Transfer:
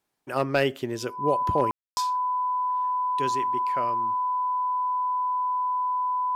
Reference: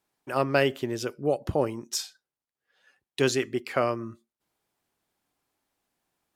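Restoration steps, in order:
clipped peaks rebuilt −12 dBFS
notch filter 1,000 Hz, Q 30
ambience match 0:01.71–0:01.97
level correction +8 dB, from 0:02.86

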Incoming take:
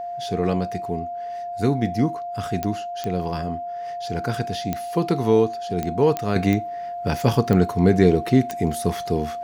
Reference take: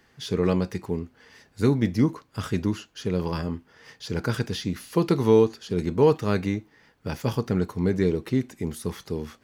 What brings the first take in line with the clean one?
click removal
notch filter 700 Hz, Q 30
level correction −7 dB, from 0:06.36

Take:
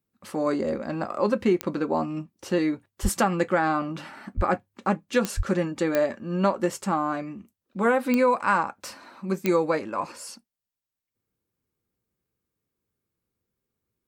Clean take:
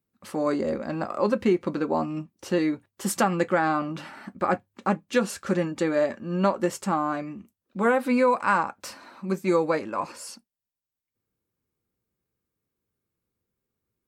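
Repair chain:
click removal
0:03.02–0:03.14: high-pass filter 140 Hz 24 dB per octave
0:04.36–0:04.48: high-pass filter 140 Hz 24 dB per octave
0:05.36–0:05.48: high-pass filter 140 Hz 24 dB per octave

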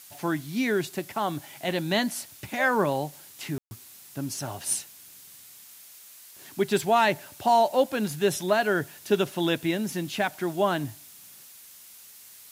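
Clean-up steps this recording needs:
ambience match 0:03.58–0:03.71
noise reduction from a noise print 22 dB

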